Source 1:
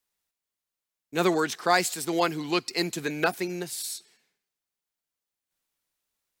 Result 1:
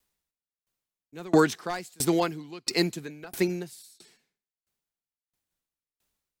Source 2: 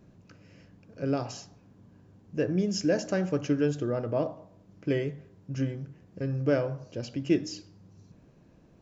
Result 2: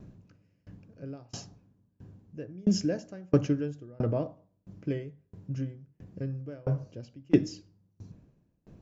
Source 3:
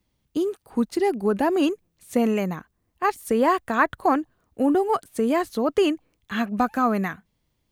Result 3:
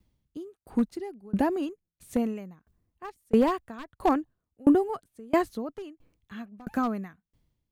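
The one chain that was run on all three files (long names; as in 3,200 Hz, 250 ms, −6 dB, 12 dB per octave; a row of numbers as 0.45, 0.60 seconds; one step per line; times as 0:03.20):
wavefolder on the positive side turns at −14.5 dBFS
low-shelf EQ 290 Hz +9.5 dB
tremolo with a ramp in dB decaying 1.5 Hz, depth 31 dB
normalise the peak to −9 dBFS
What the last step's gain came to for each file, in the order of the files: +6.5, +2.5, −1.0 decibels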